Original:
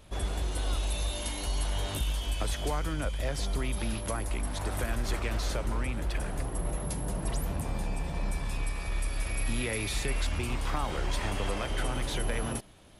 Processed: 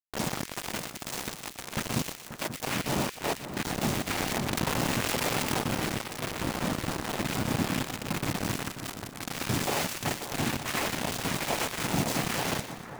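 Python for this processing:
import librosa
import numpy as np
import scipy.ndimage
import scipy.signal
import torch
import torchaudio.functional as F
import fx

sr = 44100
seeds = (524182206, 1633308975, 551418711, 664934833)

p1 = np.minimum(x, 2.0 * 10.0 ** (-24.5 / 20.0) - x)
p2 = scipy.signal.sosfilt(scipy.signal.butter(2, 2900.0, 'lowpass', fs=sr, output='sos'), p1)
p3 = fx.rider(p2, sr, range_db=4, speed_s=2.0)
p4 = fx.phaser_stages(p3, sr, stages=8, low_hz=220.0, high_hz=1600.0, hz=1.1, feedback_pct=25)
p5 = fx.noise_vocoder(p4, sr, seeds[0], bands=4)
p6 = fx.quant_dither(p5, sr, seeds[1], bits=6, dither='none')
p7 = p6 + fx.echo_split(p6, sr, split_hz=1800.0, low_ms=536, high_ms=120, feedback_pct=52, wet_db=-10.5, dry=0)
p8 = fx.env_flatten(p7, sr, amount_pct=70, at=(4.2, 5.61))
y = p8 * 10.0 ** (7.0 / 20.0)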